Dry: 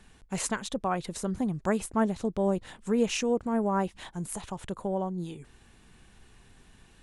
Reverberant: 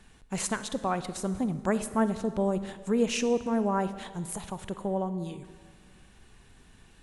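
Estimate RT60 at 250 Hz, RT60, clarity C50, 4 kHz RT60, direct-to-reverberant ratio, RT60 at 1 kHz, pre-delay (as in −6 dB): 1.9 s, 1.8 s, 12.5 dB, 1.3 s, 12.0 dB, 1.7 s, 38 ms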